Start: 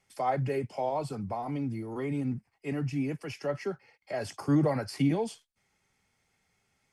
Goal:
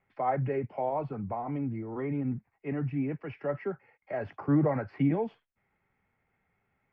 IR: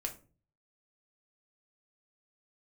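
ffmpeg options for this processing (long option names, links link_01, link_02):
-af "lowpass=frequency=2200:width=0.5412,lowpass=frequency=2200:width=1.3066"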